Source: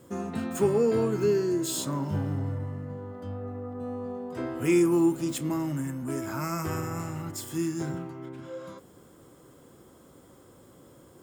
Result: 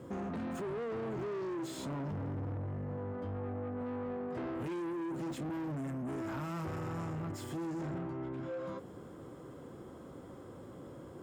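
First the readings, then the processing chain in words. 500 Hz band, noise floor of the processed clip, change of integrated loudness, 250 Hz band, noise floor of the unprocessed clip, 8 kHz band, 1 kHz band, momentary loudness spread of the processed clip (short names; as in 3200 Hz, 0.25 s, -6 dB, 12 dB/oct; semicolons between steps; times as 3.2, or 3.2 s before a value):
-11.0 dB, -50 dBFS, -10.5 dB, -9.5 dB, -55 dBFS, -18.0 dB, -6.0 dB, 12 LU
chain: limiter -24 dBFS, peak gain reduction 10.5 dB; soft clip -39 dBFS, distortion -7 dB; LPF 1600 Hz 6 dB/oct; compressor, threshold -42 dBFS, peak gain reduction 2.5 dB; HPF 50 Hz; gain +5.5 dB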